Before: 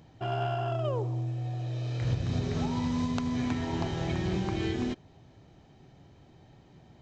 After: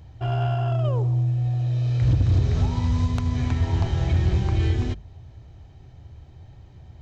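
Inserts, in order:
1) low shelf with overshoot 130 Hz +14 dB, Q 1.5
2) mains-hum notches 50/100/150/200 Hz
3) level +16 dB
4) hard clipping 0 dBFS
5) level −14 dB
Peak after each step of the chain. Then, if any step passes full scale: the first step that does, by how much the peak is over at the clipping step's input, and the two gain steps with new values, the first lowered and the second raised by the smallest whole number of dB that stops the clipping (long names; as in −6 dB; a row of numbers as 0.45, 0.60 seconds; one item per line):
−8.5, −8.5, +7.5, 0.0, −14.0 dBFS
step 3, 7.5 dB
step 3 +8 dB, step 5 −6 dB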